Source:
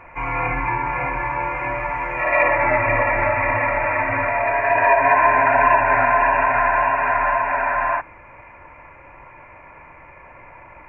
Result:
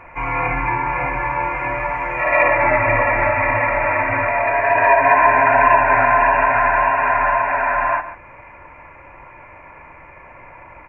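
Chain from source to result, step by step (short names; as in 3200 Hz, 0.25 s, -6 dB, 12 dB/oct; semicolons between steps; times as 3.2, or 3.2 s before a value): echo 0.142 s -13.5 dB; gain +2 dB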